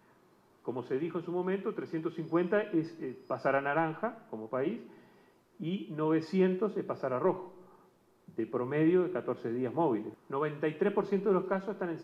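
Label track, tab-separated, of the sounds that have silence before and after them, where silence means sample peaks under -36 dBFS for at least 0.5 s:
0.680000	4.770000	sound
5.610000	7.420000	sound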